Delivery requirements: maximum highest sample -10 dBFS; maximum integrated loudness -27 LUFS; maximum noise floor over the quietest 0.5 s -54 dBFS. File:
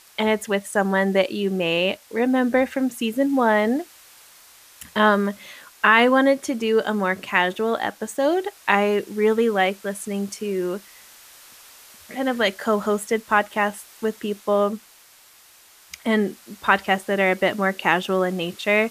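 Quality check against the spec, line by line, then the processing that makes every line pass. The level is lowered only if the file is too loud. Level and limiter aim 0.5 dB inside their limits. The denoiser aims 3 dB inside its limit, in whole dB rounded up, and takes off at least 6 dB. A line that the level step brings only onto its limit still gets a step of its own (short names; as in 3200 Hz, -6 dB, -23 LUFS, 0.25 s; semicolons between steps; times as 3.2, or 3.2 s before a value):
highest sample -2.5 dBFS: fail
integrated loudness -21.5 LUFS: fail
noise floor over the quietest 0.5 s -51 dBFS: fail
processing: gain -6 dB; limiter -10.5 dBFS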